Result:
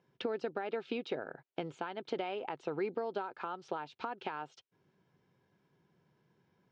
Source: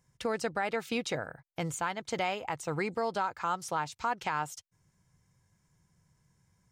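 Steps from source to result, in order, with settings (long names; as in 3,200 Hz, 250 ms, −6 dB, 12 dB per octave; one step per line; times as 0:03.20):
downward compressor, threshold −39 dBFS, peak gain reduction 12.5 dB
loudspeaker in its box 230–3,600 Hz, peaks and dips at 260 Hz +4 dB, 390 Hz +9 dB, 1,100 Hz −5 dB, 2,000 Hz −8 dB
level +4 dB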